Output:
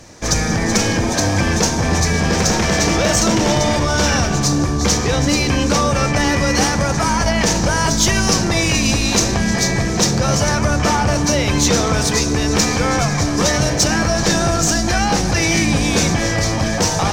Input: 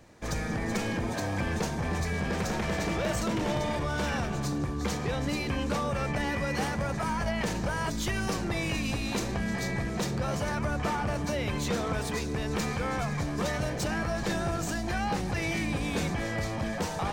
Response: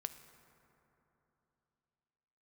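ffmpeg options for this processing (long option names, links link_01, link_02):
-filter_complex "[0:a]equalizer=frequency=5800:width=1.6:gain=12,asplit=2[link_01][link_02];[1:a]atrim=start_sample=2205,asetrate=29106,aresample=44100[link_03];[link_02][link_03]afir=irnorm=-1:irlink=0,volume=11dB[link_04];[link_01][link_04]amix=inputs=2:normalize=0"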